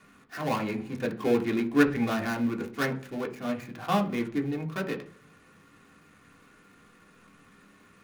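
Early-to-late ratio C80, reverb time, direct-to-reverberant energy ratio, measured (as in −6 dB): 19.0 dB, 0.50 s, 1.5 dB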